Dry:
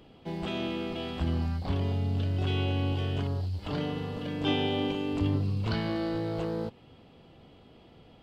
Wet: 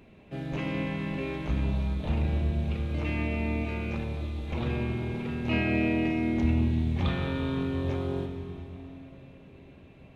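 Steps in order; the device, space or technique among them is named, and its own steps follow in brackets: slowed and reverbed (tape speed -19%; reverberation RT60 3.8 s, pre-delay 3 ms, DRR 5 dB)

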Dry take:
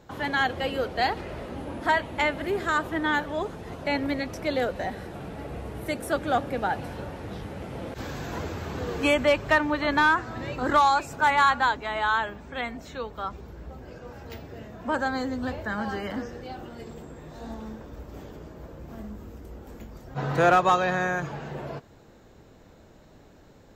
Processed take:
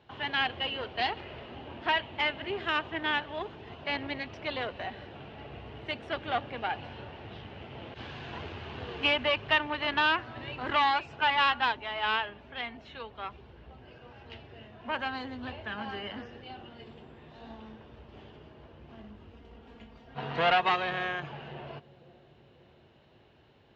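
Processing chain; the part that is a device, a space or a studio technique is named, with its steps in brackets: 19.33–20.69 s: comb 4.3 ms, depth 55%; analogue delay pedal into a guitar amplifier (bucket-brigade echo 541 ms, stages 2048, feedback 61%, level -18 dB; valve stage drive 17 dB, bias 0.8; cabinet simulation 83–4200 Hz, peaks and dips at 180 Hz -9 dB, 290 Hz -7 dB, 520 Hz -7 dB, 1.3 kHz -3 dB, 2.9 kHz +10 dB)

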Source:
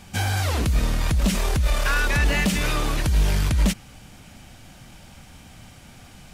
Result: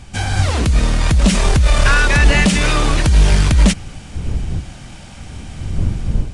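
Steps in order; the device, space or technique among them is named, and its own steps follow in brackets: smartphone video outdoors (wind noise 83 Hz -30 dBFS; level rider gain up to 6 dB; trim +3 dB; AAC 96 kbps 22.05 kHz)

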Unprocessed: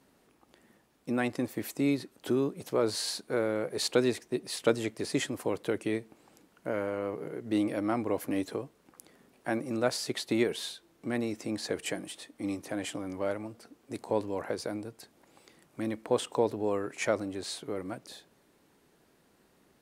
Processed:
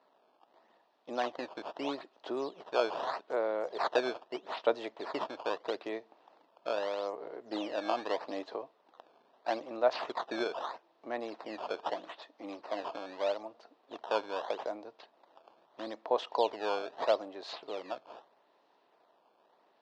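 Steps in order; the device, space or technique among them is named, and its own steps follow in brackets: circuit-bent sampling toy (decimation with a swept rate 13×, swing 160% 0.79 Hz; cabinet simulation 560–4200 Hz, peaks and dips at 660 Hz +7 dB, 940 Hz +5 dB, 1.5 kHz -5 dB, 2.2 kHz -8 dB, 3.1 kHz -3 dB)

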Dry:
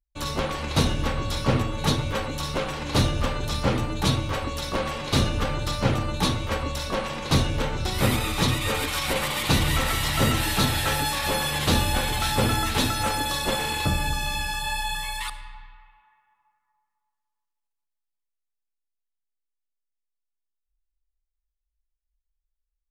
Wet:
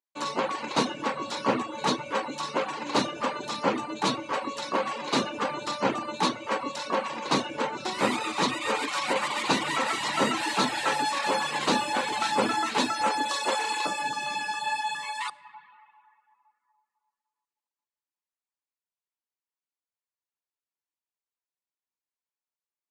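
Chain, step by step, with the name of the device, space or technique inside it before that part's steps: reverb removal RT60 0.58 s; 13.29–14.02 s: tone controls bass -14 dB, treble +4 dB; television speaker (cabinet simulation 220–7900 Hz, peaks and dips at 970 Hz +7 dB, 3.4 kHz -5 dB, 5.5 kHz -4 dB)

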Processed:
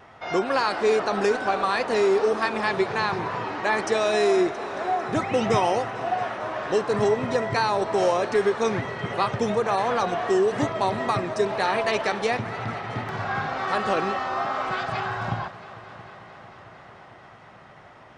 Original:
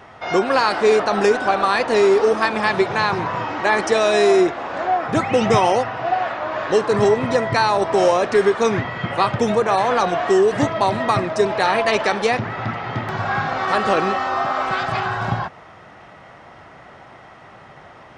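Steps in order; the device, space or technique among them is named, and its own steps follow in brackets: multi-head tape echo (multi-head delay 224 ms, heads all three, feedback 69%, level -22.5 dB; wow and flutter 20 cents); trim -6 dB

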